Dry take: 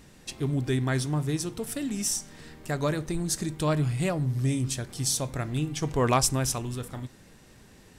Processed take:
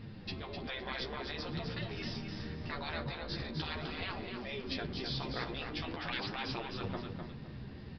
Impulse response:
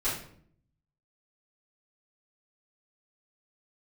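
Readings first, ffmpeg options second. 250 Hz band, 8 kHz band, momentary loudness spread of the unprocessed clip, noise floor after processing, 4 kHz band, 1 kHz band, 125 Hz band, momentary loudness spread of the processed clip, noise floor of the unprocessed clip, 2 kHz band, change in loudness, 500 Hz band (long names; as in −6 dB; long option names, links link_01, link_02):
−11.5 dB, −34.5 dB, 11 LU, −47 dBFS, −4.0 dB, −9.0 dB, −14.5 dB, 5 LU, −54 dBFS, −3.0 dB, −11.5 dB, −11.0 dB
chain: -af "afftfilt=real='re*lt(hypot(re,im),0.0708)':imag='im*lt(hypot(re,im),0.0708)':win_size=1024:overlap=0.75,equalizer=frequency=120:width_type=o:width=2.7:gain=10.5,flanger=delay=8.2:depth=7.2:regen=4:speed=0.46:shape=triangular,aecho=1:1:255|510|765:0.501|0.135|0.0365,aresample=11025,aresample=44100,volume=2dB"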